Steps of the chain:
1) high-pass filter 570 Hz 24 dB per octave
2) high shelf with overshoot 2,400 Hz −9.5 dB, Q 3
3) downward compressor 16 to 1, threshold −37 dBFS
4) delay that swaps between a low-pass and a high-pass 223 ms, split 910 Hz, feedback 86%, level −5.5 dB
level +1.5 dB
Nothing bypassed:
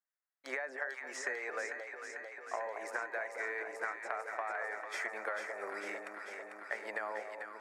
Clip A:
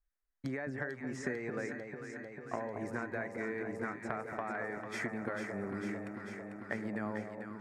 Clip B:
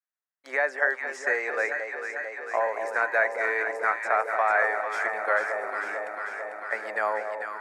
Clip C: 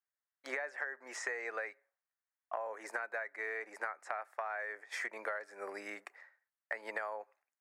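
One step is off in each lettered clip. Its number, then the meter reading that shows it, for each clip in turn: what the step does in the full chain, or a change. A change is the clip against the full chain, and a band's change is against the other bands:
1, 250 Hz band +20.0 dB
3, average gain reduction 9.5 dB
4, echo-to-direct ratio −3.0 dB to none audible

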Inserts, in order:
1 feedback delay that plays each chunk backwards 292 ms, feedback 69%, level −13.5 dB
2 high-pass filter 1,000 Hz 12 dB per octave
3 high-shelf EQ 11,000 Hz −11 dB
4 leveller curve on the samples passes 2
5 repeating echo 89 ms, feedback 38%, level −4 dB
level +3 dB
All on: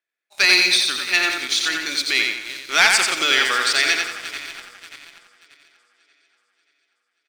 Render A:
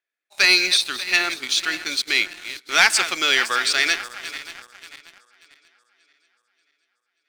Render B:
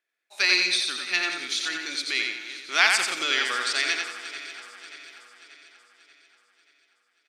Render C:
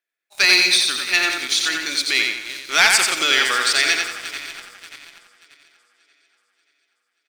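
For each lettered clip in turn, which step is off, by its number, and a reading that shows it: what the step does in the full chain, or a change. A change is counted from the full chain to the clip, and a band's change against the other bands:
5, change in integrated loudness −1.5 LU
4, change in crest factor +5.5 dB
3, 8 kHz band +2.5 dB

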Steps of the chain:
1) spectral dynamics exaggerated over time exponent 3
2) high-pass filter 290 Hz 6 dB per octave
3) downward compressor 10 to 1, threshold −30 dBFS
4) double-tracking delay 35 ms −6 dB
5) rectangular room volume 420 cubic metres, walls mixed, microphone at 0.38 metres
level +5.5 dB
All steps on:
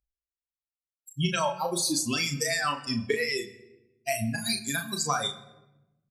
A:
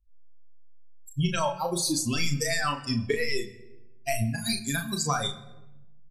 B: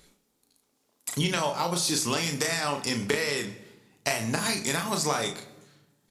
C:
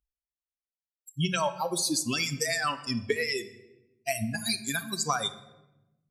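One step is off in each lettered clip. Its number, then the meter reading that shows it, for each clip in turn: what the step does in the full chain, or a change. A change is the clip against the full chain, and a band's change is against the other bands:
2, 125 Hz band +4.5 dB
1, change in crest factor +4.5 dB
4, change in integrated loudness −1.0 LU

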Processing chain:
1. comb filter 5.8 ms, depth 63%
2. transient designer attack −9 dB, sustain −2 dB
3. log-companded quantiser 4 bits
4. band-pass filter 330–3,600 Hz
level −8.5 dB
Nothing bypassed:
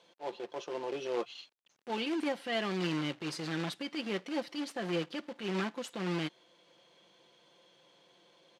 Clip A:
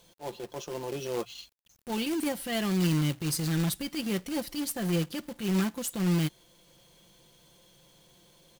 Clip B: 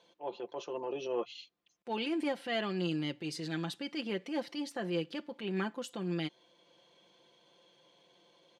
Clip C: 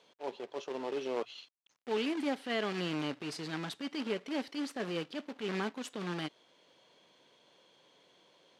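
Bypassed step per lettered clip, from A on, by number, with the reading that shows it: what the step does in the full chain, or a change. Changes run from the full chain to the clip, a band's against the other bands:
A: 4, 8 kHz band +12.5 dB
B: 3, distortion level −14 dB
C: 1, 125 Hz band −2.5 dB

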